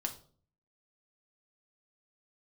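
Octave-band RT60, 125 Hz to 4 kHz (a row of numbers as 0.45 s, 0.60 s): 0.75 s, 0.65 s, 0.55 s, 0.40 s, 0.30 s, 0.35 s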